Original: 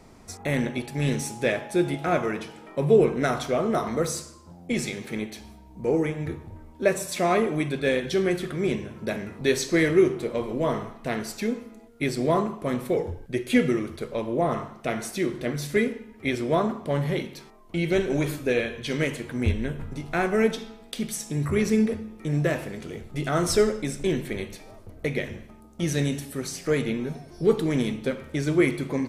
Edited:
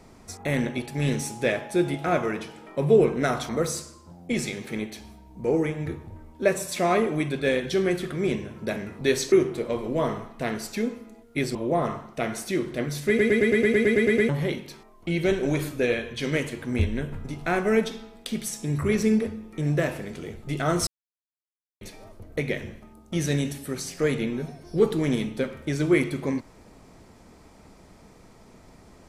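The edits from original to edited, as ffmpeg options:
-filter_complex "[0:a]asplit=17[s0][s1][s2][s3][s4][s5][s6][s7][s8][s9][s10][s11][s12][s13][s14][s15][s16];[s0]atrim=end=3.492[s17];[s1]atrim=start=3.888:end=9.722[s18];[s2]atrim=start=9.968:end=12.202[s19];[s3]atrim=start=14.218:end=15.862[s20];[s4]atrim=start=15.748:end=15.862[s21];[s5]atrim=start=15.748:end=15.862[s22];[s6]atrim=start=15.748:end=15.862[s23];[s7]atrim=start=15.748:end=15.862[s24];[s8]atrim=start=15.748:end=15.862[s25];[s9]atrim=start=15.748:end=15.862[s26];[s10]atrim=start=15.748:end=15.862[s27];[s11]atrim=start=15.748:end=15.862[s28];[s12]atrim=start=15.748:end=15.862[s29];[s13]atrim=start=15.748:end=15.862[s30];[s14]atrim=start=16.958:end=23.54,asetpts=PTS-STARTPTS,afade=t=out:st=6.578:d=0.004:c=hsin[s31];[s15]atrim=start=23.54:end=24.48,asetpts=PTS-STARTPTS,volume=0[s32];[s16]atrim=start=24.48,asetpts=PTS-STARTPTS,afade=t=in:d=0.004:c=hsin[s33];[s17][s18]acrossfade=d=0.004:c1=hsin:c2=hsin[s34];[s34][s19]acrossfade=d=0.004:c1=hsin:c2=hsin[s35];[s35][s20]acrossfade=d=0.004:c1=hsin:c2=hsin[s36];[s36][s21]acrossfade=d=0.004:c1=hsin:c2=hsin[s37];[s37][s22]acrossfade=d=0.004:c1=hsin:c2=hsin[s38];[s38][s23]acrossfade=d=0.004:c1=hsin:c2=hsin[s39];[s39][s24]acrossfade=d=0.004:c1=hsin:c2=hsin[s40];[s40][s25]acrossfade=d=0.004:c1=hsin:c2=hsin[s41];[s41][s26]acrossfade=d=0.004:c1=hsin:c2=hsin[s42];[s42][s27]acrossfade=d=0.004:c1=hsin:c2=hsin[s43];[s43][s28]acrossfade=d=0.004:c1=hsin:c2=hsin[s44];[s44][s29]acrossfade=d=0.004:c1=hsin:c2=hsin[s45];[s45][s30]acrossfade=d=0.004:c1=hsin:c2=hsin[s46];[s31][s32][s33]concat=n=3:v=0:a=1[s47];[s46][s47]acrossfade=d=0.004:c1=hsin:c2=hsin"

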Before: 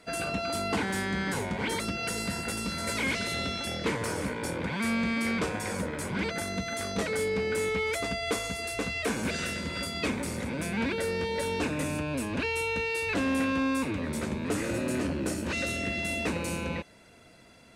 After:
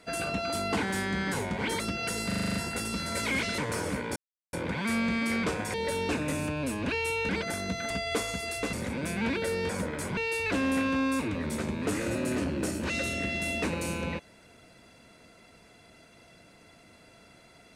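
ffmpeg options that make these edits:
-filter_complex "[0:a]asplit=16[s0][s1][s2][s3][s4][s5][s6][s7][s8][s9][s10][s11][s12][s13][s14][s15];[s0]atrim=end=2.312[s16];[s1]atrim=start=2.268:end=2.312[s17];[s2]atrim=start=2.268:end=2.312[s18];[s3]atrim=start=2.268:end=2.312[s19];[s4]atrim=start=2.268:end=2.312[s20];[s5]atrim=start=2.268:end=2.312[s21];[s6]atrim=start=2.268:end=2.312[s22];[s7]atrim=start=2.268:end=3.302[s23];[s8]atrim=start=3.898:end=4.48,asetpts=PTS-STARTPTS,afade=t=out:st=0.578:d=0.004:c=hsin,apad=pad_dur=0.37[s24];[s9]atrim=start=4.48:end=5.692,asetpts=PTS-STARTPTS,afade=t=in:d=0.004:c=hsin[s25];[s10]atrim=start=11.248:end=12.802[s26];[s11]atrim=start=6.168:end=6.782[s27];[s12]atrim=start=8.058:end=8.892[s28];[s13]atrim=start=10.288:end=11.252[s29];[s14]atrim=start=5.688:end=6.172[s30];[s15]atrim=start=12.798[s31];[s16][s17]acrossfade=d=0.004:c1=hsin:c2=hsin[s32];[s32][s18]acrossfade=d=0.004:c1=hsin:c2=hsin[s33];[s33][s19]acrossfade=d=0.004:c1=hsin:c2=hsin[s34];[s34][s20]acrossfade=d=0.004:c1=hsin:c2=hsin[s35];[s35][s21]acrossfade=d=0.004:c1=hsin:c2=hsin[s36];[s36][s22]acrossfade=d=0.004:c1=hsin:c2=hsin[s37];[s37][s23]acrossfade=d=0.004:c1=hsin:c2=hsin[s38];[s24][s25]concat=n=2:v=0:a=1[s39];[s38][s39]acrossfade=d=0.004:c1=hsin:c2=hsin[s40];[s40][s26]acrossfade=d=0.004:c1=hsin:c2=hsin[s41];[s41][s27]acrossfade=d=0.004:c1=hsin:c2=hsin[s42];[s42][s28]acrossfade=d=0.004:c1=hsin:c2=hsin[s43];[s43][s29]acrossfade=d=0.004:c1=hsin:c2=hsin[s44];[s44][s30]acrossfade=d=0.004:c1=hsin:c2=hsin[s45];[s45][s31]acrossfade=d=0.004:c1=hsin:c2=hsin"

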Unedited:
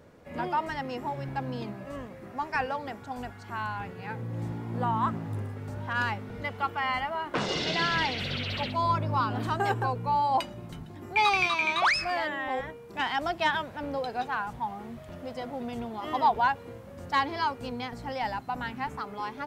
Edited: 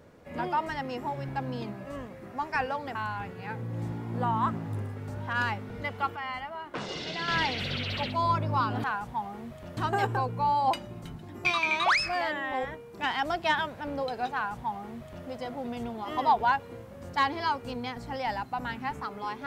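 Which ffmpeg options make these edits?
-filter_complex "[0:a]asplit=7[s0][s1][s2][s3][s4][s5][s6];[s0]atrim=end=2.952[s7];[s1]atrim=start=3.548:end=6.762[s8];[s2]atrim=start=6.758:end=7.882,asetpts=PTS-STARTPTS,volume=0.473[s9];[s3]atrim=start=7.878:end=9.442[s10];[s4]atrim=start=14.298:end=15.232[s11];[s5]atrim=start=9.438:end=11.122[s12];[s6]atrim=start=11.408[s13];[s7][s8]acrossfade=d=0.004:c1=hsin:c2=hsin[s14];[s14][s9]acrossfade=d=0.004:c1=hsin:c2=hsin[s15];[s15][s10]acrossfade=d=0.004:c1=hsin:c2=hsin[s16];[s16][s11]acrossfade=d=0.004:c1=hsin:c2=hsin[s17];[s17][s12]acrossfade=d=0.004:c1=hsin:c2=hsin[s18];[s18][s13]acrossfade=d=0.004:c1=hsin:c2=hsin"

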